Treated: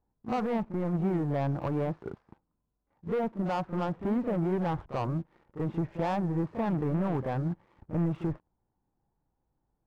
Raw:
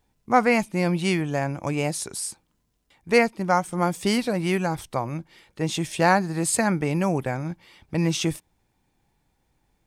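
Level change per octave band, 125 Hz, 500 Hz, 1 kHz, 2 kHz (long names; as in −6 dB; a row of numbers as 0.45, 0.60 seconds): −3.5, −7.5, −9.5, −18.0 decibels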